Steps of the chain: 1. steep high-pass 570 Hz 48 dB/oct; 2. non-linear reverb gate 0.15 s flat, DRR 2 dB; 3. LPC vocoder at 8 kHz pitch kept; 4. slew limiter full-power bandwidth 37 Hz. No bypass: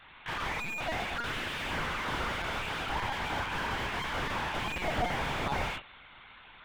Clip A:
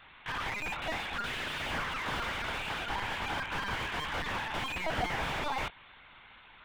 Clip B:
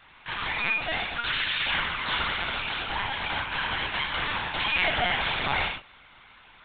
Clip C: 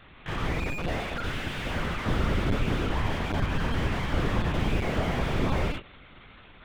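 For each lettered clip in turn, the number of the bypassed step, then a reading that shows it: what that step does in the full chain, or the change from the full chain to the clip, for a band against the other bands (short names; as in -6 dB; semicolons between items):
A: 2, loudness change -1.0 LU; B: 4, crest factor change +4.0 dB; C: 1, 125 Hz band +12.5 dB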